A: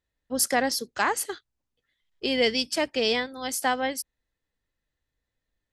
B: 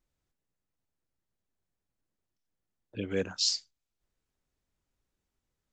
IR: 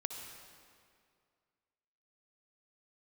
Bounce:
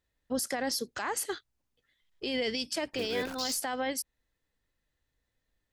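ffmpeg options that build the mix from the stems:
-filter_complex "[0:a]alimiter=limit=-20.5dB:level=0:latency=1:release=177,volume=2dB[link_01];[1:a]bass=frequency=250:gain=-8,treble=frequency=4000:gain=-7,acrusher=bits=8:dc=4:mix=0:aa=0.000001,volume=1.5dB[link_02];[link_01][link_02]amix=inputs=2:normalize=0,alimiter=limit=-22.5dB:level=0:latency=1:release=21"

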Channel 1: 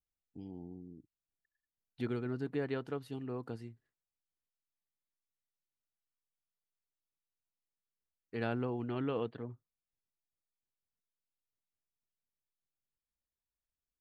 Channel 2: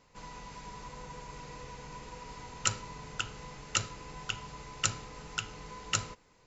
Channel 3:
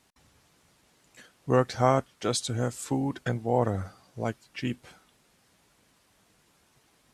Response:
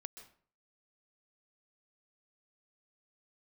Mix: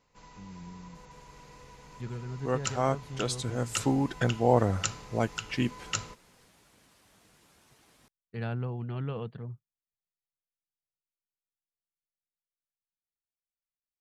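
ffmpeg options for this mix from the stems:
-filter_complex "[0:a]agate=range=-13dB:threshold=-51dB:ratio=16:detection=peak,lowshelf=frequency=220:width_type=q:width=3:gain=6.5,volume=-6dB,asplit=2[link_01][link_02];[1:a]volume=-6.5dB[link_03];[2:a]adelay=950,volume=-2.5dB[link_04];[link_02]apad=whole_len=356355[link_05];[link_04][link_05]sidechaincompress=threshold=-45dB:ratio=8:attack=7:release=255[link_06];[link_01][link_03][link_06]amix=inputs=3:normalize=0,dynaudnorm=framelen=290:gausssize=21:maxgain=5dB"

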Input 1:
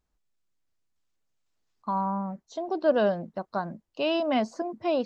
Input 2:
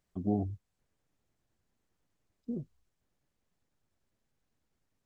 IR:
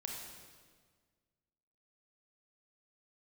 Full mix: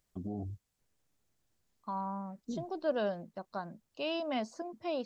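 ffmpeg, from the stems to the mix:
-filter_complex "[0:a]volume=-9.5dB[link_01];[1:a]alimiter=level_in=4.5dB:limit=-24dB:level=0:latency=1:release=76,volume=-4.5dB,volume=-2dB[link_02];[link_01][link_02]amix=inputs=2:normalize=0,highshelf=frequency=3800:gain=7.5"

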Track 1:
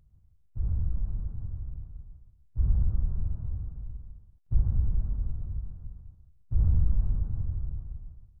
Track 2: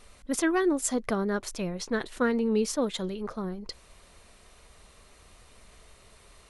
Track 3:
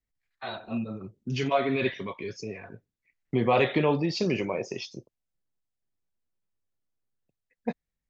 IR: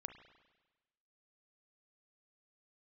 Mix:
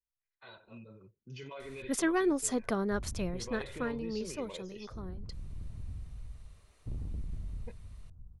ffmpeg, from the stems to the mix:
-filter_complex "[0:a]asoftclip=type=tanh:threshold=-29.5dB,adelay=2350,volume=-6.5dB,asplit=2[link_01][link_02];[link_02]volume=-8dB[link_03];[1:a]adelay=1600,volume=-3.5dB,afade=type=out:start_time=3.25:duration=0.73:silence=0.398107[link_04];[2:a]equalizer=frequency=700:width_type=o:width=0.39:gain=-6,aecho=1:1:2:0.46,alimiter=limit=-20.5dB:level=0:latency=1,volume=-15.5dB,asplit=2[link_05][link_06];[link_06]apad=whole_len=474106[link_07];[link_01][link_07]sidechaincompress=threshold=-53dB:ratio=8:attack=7.4:release=1240[link_08];[3:a]atrim=start_sample=2205[link_09];[link_03][link_09]afir=irnorm=-1:irlink=0[link_10];[link_08][link_04][link_05][link_10]amix=inputs=4:normalize=0"

